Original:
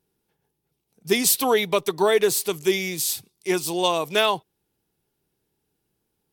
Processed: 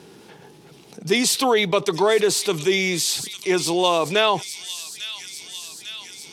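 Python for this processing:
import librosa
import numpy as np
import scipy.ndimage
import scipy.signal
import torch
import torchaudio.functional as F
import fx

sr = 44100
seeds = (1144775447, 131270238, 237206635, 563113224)

y = fx.bandpass_edges(x, sr, low_hz=160.0, high_hz=6600.0)
y = fx.echo_wet_highpass(y, sr, ms=850, feedback_pct=50, hz=4500.0, wet_db=-15)
y = fx.env_flatten(y, sr, amount_pct=50)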